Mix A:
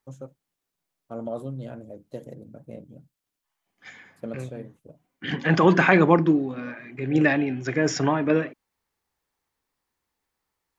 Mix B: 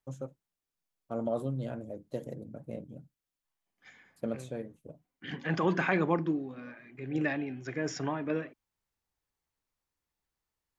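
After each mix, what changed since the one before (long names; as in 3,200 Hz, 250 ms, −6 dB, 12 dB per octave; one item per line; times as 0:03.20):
second voice −11.0 dB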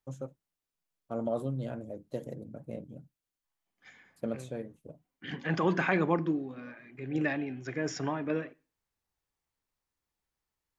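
reverb: on, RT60 0.35 s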